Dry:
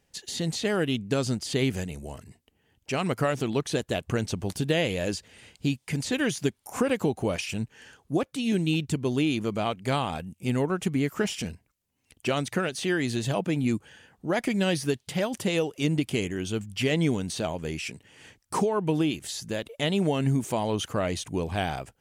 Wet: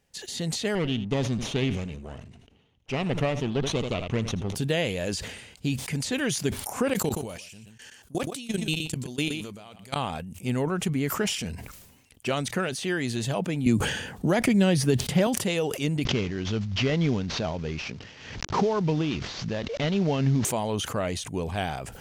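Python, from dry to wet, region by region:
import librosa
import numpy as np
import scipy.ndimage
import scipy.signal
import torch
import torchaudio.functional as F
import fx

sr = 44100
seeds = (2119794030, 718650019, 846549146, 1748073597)

y = fx.chain(x, sr, fx.lower_of_two(delay_ms=0.32),
    fx.lowpass(hz=4600.0, slope=12),
    fx.echo_single(ms=80, db=-18.5), at=(0.75, 4.55))
y = fx.chain(y, sr, fx.high_shelf(hz=3300.0, db=12.0),
    fx.level_steps(step_db=23),
    fx.echo_single(ms=122, db=-12.0), at=(6.93, 9.96))
y = fx.chain(y, sr, fx.low_shelf(hz=470.0, db=7.5),
    fx.band_squash(depth_pct=70), at=(13.66, 15.27))
y = fx.chain(y, sr, fx.cvsd(bps=32000),
    fx.low_shelf(hz=170.0, db=5.0),
    fx.pre_swell(db_per_s=60.0), at=(16.05, 20.45))
y = fx.peak_eq(y, sr, hz=320.0, db=-5.0, octaves=0.2)
y = fx.sustainer(y, sr, db_per_s=53.0)
y = F.gain(torch.from_numpy(y), -1.0).numpy()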